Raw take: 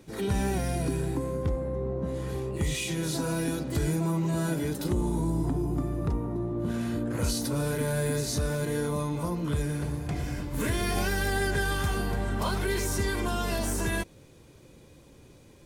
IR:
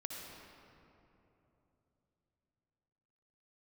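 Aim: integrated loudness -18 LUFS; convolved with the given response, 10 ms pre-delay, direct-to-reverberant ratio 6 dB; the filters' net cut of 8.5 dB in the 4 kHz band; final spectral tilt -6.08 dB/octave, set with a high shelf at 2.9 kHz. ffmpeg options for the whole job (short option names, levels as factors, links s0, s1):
-filter_complex "[0:a]highshelf=f=2900:g=-9,equalizer=f=4000:t=o:g=-3.5,asplit=2[s0][s1];[1:a]atrim=start_sample=2205,adelay=10[s2];[s1][s2]afir=irnorm=-1:irlink=0,volume=0.562[s3];[s0][s3]amix=inputs=2:normalize=0,volume=3.76"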